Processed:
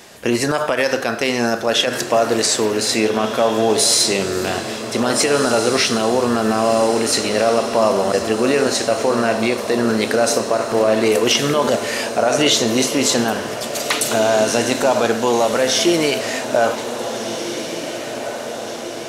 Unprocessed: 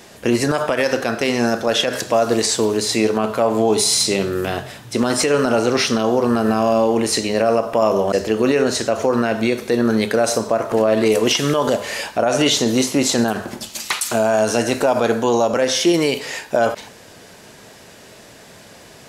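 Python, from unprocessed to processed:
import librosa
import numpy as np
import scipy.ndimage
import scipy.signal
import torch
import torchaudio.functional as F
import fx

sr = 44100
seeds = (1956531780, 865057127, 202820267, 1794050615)

y = fx.low_shelf(x, sr, hz=420.0, db=-5.0)
y = fx.echo_diffused(y, sr, ms=1714, feedback_pct=61, wet_db=-9.5)
y = y * 10.0 ** (2.0 / 20.0)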